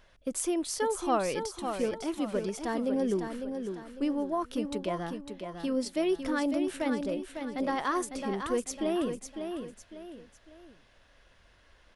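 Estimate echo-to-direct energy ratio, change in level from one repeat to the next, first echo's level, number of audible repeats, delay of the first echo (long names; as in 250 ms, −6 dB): −6.5 dB, −8.5 dB, −7.0 dB, 3, 552 ms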